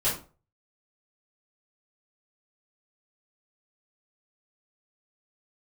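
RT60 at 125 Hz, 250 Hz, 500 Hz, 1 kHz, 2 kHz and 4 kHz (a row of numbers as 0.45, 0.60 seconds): 0.45, 0.35, 0.40, 0.35, 0.30, 0.25 seconds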